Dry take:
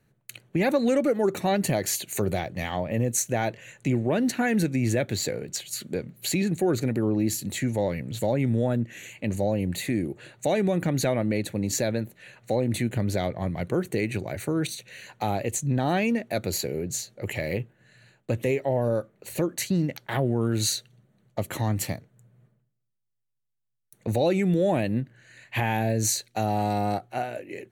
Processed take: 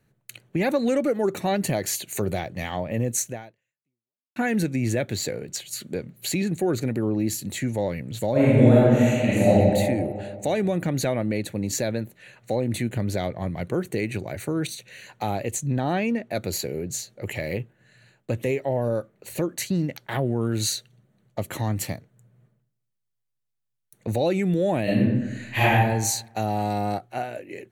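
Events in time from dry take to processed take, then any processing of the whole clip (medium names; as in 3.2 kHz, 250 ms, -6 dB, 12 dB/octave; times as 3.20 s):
3.26–4.36 s: fade out exponential
8.31–9.50 s: reverb throw, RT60 2.2 s, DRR -10 dB
15.80–16.35 s: treble shelf 4.8 kHz -8 dB
24.83–25.70 s: reverb throw, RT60 1 s, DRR -8.5 dB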